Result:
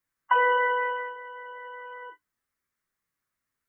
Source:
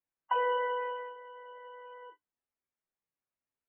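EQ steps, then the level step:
low-shelf EQ 380 Hz +11.5 dB
flat-topped bell 1,500 Hz +10 dB 1.2 octaves
high-shelf EQ 2,500 Hz +9.5 dB
0.0 dB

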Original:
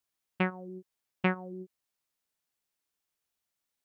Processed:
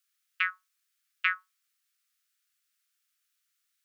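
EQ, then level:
Butterworth high-pass 1,200 Hz 96 dB per octave
+7.0 dB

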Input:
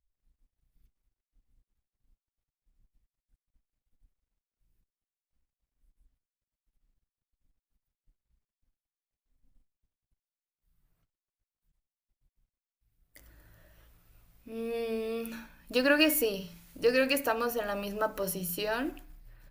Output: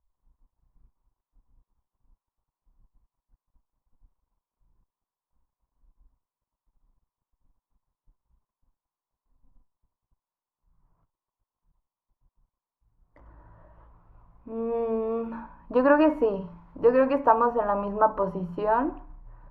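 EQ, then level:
low-pass with resonance 1,000 Hz, resonance Q 6.1
low-shelf EQ 400 Hz +3.5 dB
+2.5 dB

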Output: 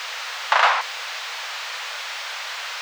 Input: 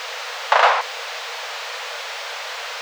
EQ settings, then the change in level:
high-pass filter 920 Hz 12 dB per octave
0.0 dB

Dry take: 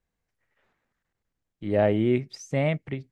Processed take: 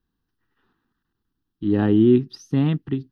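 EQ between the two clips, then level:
parametric band 300 Hz +10.5 dB 1.1 octaves
phaser with its sweep stopped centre 2,200 Hz, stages 6
+4.0 dB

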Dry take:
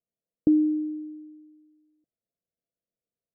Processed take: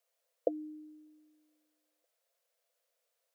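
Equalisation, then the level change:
elliptic high-pass filter 510 Hz, stop band 50 dB
+14.0 dB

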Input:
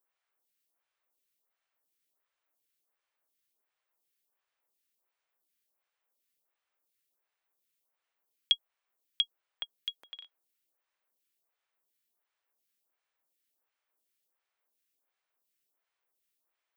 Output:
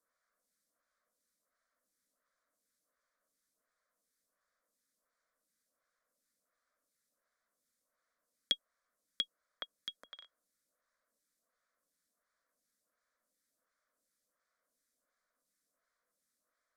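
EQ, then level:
low-pass filter 9,300 Hz
low-shelf EQ 460 Hz +4 dB
phaser with its sweep stopped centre 560 Hz, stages 8
+5.5 dB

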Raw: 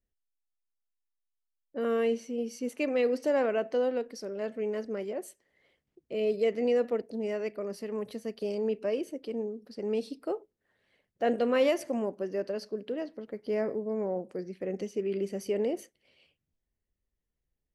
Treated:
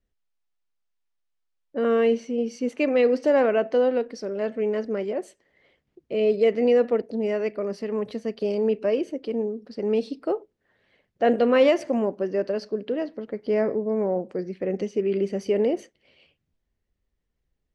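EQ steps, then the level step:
high-frequency loss of the air 98 metres
+7.5 dB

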